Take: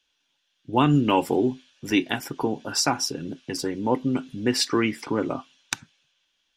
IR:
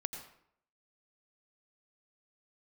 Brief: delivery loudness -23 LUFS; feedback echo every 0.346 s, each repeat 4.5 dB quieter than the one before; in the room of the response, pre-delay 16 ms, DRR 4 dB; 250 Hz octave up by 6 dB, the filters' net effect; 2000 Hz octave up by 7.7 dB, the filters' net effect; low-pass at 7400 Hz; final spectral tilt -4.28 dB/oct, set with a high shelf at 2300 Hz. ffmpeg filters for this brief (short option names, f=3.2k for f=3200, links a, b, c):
-filter_complex "[0:a]lowpass=7.4k,equalizer=f=250:t=o:g=7,equalizer=f=2k:t=o:g=7.5,highshelf=f=2.3k:g=4.5,aecho=1:1:346|692|1038|1384|1730|2076|2422|2768|3114:0.596|0.357|0.214|0.129|0.0772|0.0463|0.0278|0.0167|0.01,asplit=2[a][b];[1:a]atrim=start_sample=2205,adelay=16[c];[b][c]afir=irnorm=-1:irlink=0,volume=-4dB[d];[a][d]amix=inputs=2:normalize=0,volume=-6dB"